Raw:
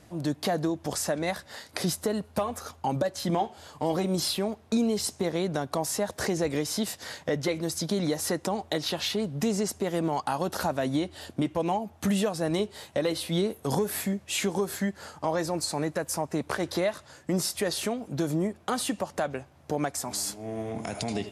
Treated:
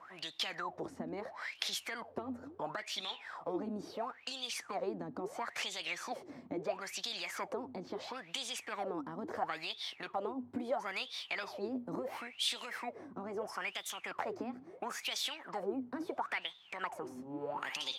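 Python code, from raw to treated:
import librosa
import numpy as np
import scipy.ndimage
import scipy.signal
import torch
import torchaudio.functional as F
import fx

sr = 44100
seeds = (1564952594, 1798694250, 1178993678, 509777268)

y = fx.speed_glide(x, sr, from_pct=108, to_pct=129)
y = fx.wah_lfo(y, sr, hz=0.74, low_hz=240.0, high_hz=3600.0, q=20.0)
y = fx.spectral_comp(y, sr, ratio=2.0)
y = y * 10.0 ** (6.0 / 20.0)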